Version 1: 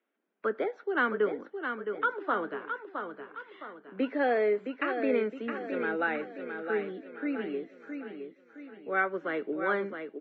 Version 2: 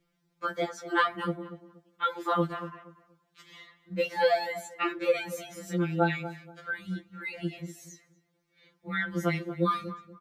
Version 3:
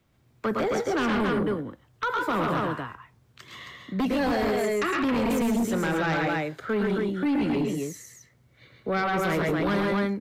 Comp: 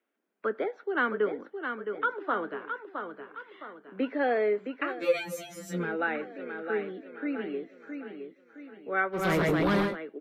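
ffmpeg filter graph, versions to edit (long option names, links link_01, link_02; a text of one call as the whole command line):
ffmpeg -i take0.wav -i take1.wav -i take2.wav -filter_complex "[0:a]asplit=3[link_01][link_02][link_03];[link_01]atrim=end=5.07,asetpts=PTS-STARTPTS[link_04];[1:a]atrim=start=4.83:end=5.94,asetpts=PTS-STARTPTS[link_05];[link_02]atrim=start=5.7:end=9.28,asetpts=PTS-STARTPTS[link_06];[2:a]atrim=start=9.12:end=9.97,asetpts=PTS-STARTPTS[link_07];[link_03]atrim=start=9.81,asetpts=PTS-STARTPTS[link_08];[link_04][link_05]acrossfade=duration=0.24:curve1=tri:curve2=tri[link_09];[link_09][link_06]acrossfade=duration=0.24:curve1=tri:curve2=tri[link_10];[link_10][link_07]acrossfade=duration=0.16:curve1=tri:curve2=tri[link_11];[link_11][link_08]acrossfade=duration=0.16:curve1=tri:curve2=tri" out.wav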